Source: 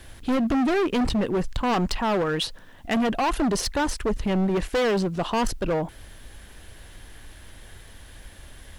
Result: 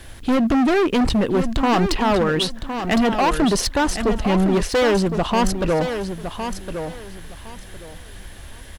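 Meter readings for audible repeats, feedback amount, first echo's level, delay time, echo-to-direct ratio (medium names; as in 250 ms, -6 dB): 3, 22%, -8.5 dB, 1061 ms, -8.5 dB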